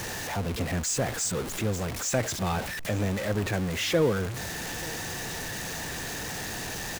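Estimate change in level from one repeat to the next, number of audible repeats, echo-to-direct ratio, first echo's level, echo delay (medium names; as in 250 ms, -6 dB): no regular repeats, 1, -21.0 dB, -21.0 dB, 885 ms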